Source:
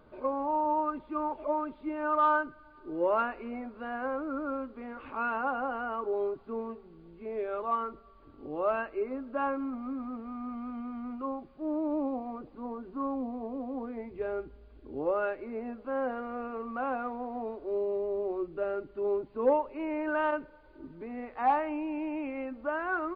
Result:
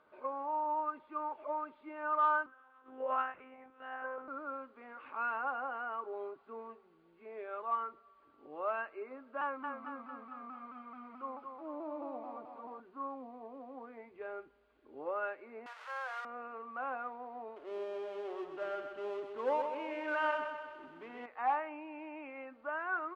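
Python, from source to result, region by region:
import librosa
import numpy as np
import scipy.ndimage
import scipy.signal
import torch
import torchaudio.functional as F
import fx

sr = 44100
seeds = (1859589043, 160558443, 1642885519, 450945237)

y = fx.chain(x, sr, fx.highpass(hz=94.0, slope=24),
    fx.lpc_monotone(seeds[0], pitch_hz=260.0, order=10), at=(2.46, 4.28))
y = fx.chain(y, sr, fx.echo_thinned(ms=225, feedback_pct=57, hz=370.0, wet_db=-4.0),
    fx.vibrato_shape(shape='saw_down', rate_hz=4.6, depth_cents=100.0), at=(9.41, 12.8))
y = fx.chain(y, sr, fx.zero_step(step_db=-37.0),
    fx.bessel_highpass(hz=970.0, order=8),
    fx.peak_eq(hz=1300.0, db=4.0, octaves=1.4), at=(15.66, 16.25))
y = fx.chain(y, sr, fx.law_mismatch(coded='mu'),
    fx.peak_eq(hz=3000.0, db=6.5, octaves=0.35),
    fx.echo_feedback(ms=127, feedback_pct=56, wet_db=-6.5), at=(17.56, 21.26))
y = scipy.signal.sosfilt(scipy.signal.butter(2, 1600.0, 'lowpass', fs=sr, output='sos'), y)
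y = np.diff(y, prepend=0.0)
y = F.gain(torch.from_numpy(y), 13.0).numpy()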